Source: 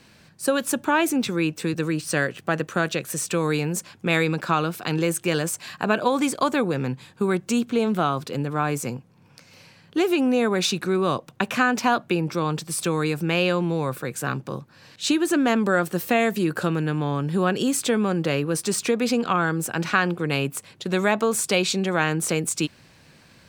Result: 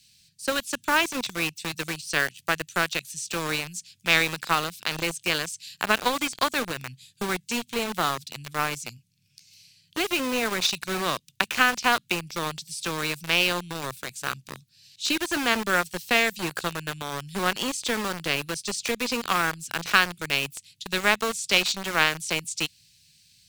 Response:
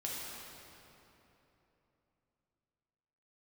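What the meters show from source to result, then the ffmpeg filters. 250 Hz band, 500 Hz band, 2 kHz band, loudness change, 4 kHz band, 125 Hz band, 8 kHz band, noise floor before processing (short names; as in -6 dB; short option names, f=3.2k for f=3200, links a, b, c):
-10.0 dB, -7.5 dB, +2.0 dB, -2.5 dB, +4.0 dB, -11.0 dB, -2.5 dB, -54 dBFS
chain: -filter_complex "[0:a]acrossover=split=6400[a][b];[b]acompressor=threshold=-47dB:ratio=4:attack=1:release=60[c];[a][c]amix=inputs=2:normalize=0,aeval=exprs='0.708*(cos(1*acos(clip(val(0)/0.708,-1,1)))-cos(1*PI/2))+0.141*(cos(2*acos(clip(val(0)/0.708,-1,1)))-cos(2*PI/2))+0.0355*(cos(3*acos(clip(val(0)/0.708,-1,1)))-cos(3*PI/2))+0.0126*(cos(4*acos(clip(val(0)/0.708,-1,1)))-cos(4*PI/2))+0.0251*(cos(7*acos(clip(val(0)/0.708,-1,1)))-cos(7*PI/2))':c=same,tiltshelf=f=1.1k:g=-7,acrossover=split=180|2900[d][e][f];[e]acrusher=bits=4:mix=0:aa=0.000001[g];[d][g][f]amix=inputs=3:normalize=0"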